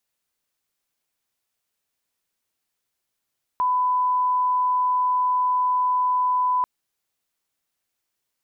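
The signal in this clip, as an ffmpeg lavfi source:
-f lavfi -i "sine=f=1000:d=3.04:r=44100,volume=0.06dB"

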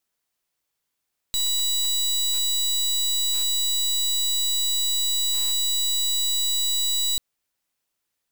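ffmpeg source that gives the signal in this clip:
-f lavfi -i "aevalsrc='0.0708*(2*lt(mod(3920*t,1),0.25)-1)':d=5.84:s=44100"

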